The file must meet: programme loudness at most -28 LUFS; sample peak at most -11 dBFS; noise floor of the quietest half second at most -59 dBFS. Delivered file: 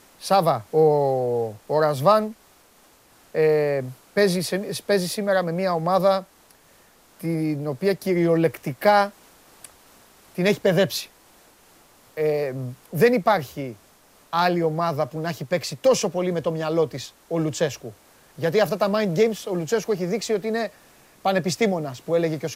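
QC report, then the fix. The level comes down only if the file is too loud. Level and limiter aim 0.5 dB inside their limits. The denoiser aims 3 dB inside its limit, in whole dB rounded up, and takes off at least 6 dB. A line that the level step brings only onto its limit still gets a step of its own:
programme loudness -22.5 LUFS: fail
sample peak -4.5 dBFS: fail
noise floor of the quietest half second -55 dBFS: fail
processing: trim -6 dB; peak limiter -11.5 dBFS

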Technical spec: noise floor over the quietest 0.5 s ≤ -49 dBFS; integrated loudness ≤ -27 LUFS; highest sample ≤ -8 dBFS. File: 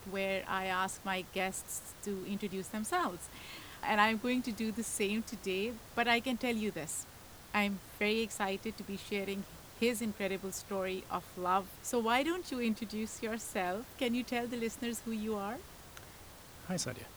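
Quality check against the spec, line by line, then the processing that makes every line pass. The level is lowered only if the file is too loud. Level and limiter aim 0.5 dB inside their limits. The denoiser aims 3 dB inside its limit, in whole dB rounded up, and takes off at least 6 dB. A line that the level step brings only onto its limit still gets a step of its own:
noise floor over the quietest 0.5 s -53 dBFS: pass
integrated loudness -35.5 LUFS: pass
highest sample -12.0 dBFS: pass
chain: none needed

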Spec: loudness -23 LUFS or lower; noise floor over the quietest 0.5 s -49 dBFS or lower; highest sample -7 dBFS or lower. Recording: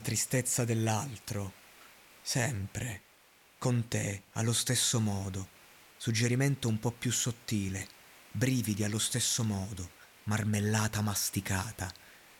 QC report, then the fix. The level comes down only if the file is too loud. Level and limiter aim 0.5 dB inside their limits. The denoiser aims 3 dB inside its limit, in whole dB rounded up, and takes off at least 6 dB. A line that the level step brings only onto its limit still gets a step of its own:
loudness -32.0 LUFS: pass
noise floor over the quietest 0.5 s -62 dBFS: pass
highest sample -16.5 dBFS: pass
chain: none needed

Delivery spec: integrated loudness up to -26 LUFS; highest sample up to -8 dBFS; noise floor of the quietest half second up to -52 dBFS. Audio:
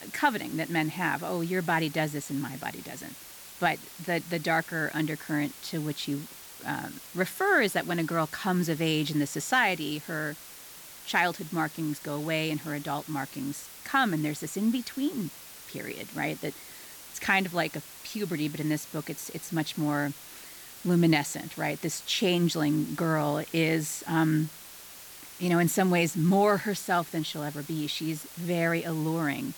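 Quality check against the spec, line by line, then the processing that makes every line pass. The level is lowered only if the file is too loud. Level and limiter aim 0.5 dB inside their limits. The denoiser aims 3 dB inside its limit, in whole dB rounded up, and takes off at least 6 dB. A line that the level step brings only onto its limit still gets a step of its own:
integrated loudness -29.0 LUFS: pass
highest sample -11.0 dBFS: pass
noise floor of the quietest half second -47 dBFS: fail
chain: noise reduction 8 dB, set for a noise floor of -47 dBFS

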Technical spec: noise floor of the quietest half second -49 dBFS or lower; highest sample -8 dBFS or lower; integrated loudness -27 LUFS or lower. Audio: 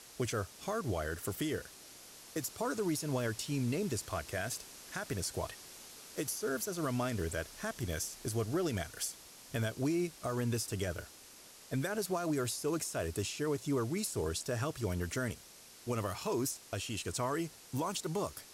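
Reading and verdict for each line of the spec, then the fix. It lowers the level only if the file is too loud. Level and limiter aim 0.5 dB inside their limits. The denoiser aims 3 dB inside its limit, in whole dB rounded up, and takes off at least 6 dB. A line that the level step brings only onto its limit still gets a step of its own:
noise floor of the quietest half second -56 dBFS: pass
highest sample -24.0 dBFS: pass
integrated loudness -36.5 LUFS: pass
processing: none needed

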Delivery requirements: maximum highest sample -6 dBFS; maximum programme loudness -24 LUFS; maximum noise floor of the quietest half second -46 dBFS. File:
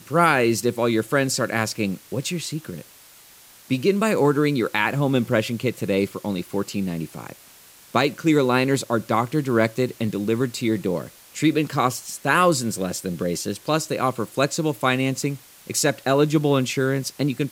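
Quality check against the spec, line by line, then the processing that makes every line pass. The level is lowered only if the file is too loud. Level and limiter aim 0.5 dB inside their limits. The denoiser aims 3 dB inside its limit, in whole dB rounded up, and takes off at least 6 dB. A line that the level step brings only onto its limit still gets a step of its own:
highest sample -4.5 dBFS: fail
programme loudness -22.5 LUFS: fail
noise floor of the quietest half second -49 dBFS: pass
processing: trim -2 dB

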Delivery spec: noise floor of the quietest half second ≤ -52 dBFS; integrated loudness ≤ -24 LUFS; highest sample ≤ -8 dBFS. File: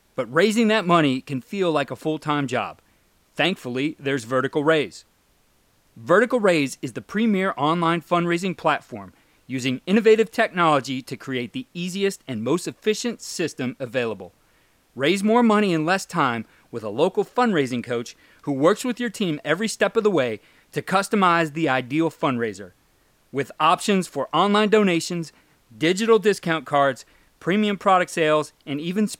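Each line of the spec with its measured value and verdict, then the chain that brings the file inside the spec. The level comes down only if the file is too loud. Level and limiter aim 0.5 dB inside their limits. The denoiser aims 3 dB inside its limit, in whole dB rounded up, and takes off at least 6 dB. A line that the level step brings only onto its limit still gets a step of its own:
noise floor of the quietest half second -62 dBFS: pass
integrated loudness -22.0 LUFS: fail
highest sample -6.0 dBFS: fail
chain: trim -2.5 dB

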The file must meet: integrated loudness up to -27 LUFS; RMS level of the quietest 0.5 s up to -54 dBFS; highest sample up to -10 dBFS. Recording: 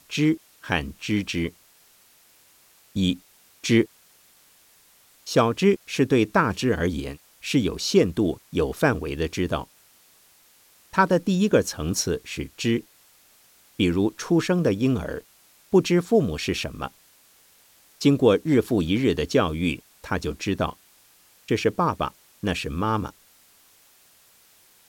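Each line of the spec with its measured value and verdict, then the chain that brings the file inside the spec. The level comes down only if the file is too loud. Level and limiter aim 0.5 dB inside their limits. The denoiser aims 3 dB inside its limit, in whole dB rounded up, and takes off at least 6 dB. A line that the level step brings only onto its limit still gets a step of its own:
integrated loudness -24.0 LUFS: fail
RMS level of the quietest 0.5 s -57 dBFS: pass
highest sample -5.5 dBFS: fail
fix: trim -3.5 dB; peak limiter -10.5 dBFS

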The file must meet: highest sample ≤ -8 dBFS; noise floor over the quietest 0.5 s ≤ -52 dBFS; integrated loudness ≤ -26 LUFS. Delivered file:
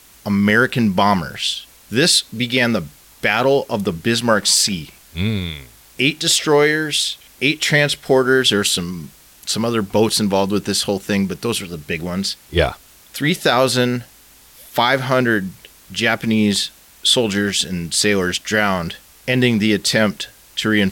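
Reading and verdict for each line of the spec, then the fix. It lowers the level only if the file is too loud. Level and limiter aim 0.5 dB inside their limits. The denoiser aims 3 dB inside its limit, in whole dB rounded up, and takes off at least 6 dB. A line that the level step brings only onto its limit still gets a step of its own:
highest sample -3.5 dBFS: fail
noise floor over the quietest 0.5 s -47 dBFS: fail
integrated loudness -17.5 LUFS: fail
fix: trim -9 dB

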